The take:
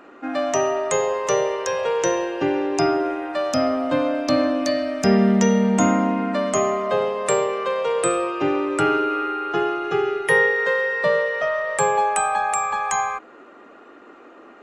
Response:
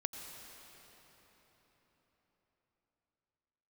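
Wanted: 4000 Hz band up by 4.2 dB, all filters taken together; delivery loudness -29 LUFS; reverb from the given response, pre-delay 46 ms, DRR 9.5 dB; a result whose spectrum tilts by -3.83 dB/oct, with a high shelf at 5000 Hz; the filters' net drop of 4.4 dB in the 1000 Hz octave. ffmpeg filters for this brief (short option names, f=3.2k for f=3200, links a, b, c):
-filter_complex "[0:a]equalizer=f=1k:t=o:g=-6.5,equalizer=f=4k:t=o:g=4.5,highshelf=f=5k:g=3.5,asplit=2[a][b];[1:a]atrim=start_sample=2205,adelay=46[c];[b][c]afir=irnorm=-1:irlink=0,volume=-10dB[d];[a][d]amix=inputs=2:normalize=0,volume=-8dB"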